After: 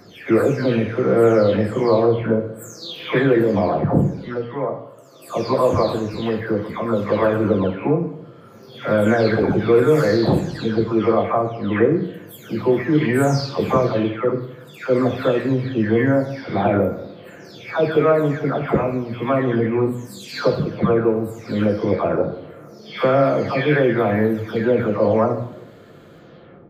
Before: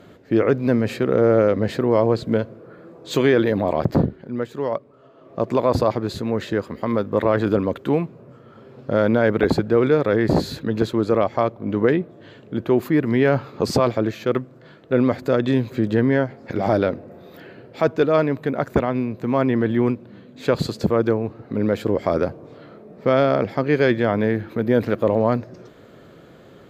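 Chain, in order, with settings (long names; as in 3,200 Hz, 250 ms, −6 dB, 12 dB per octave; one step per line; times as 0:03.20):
every frequency bin delayed by itself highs early, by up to 518 ms
dense smooth reverb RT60 0.79 s, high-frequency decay 0.8×, DRR 5 dB
level +2 dB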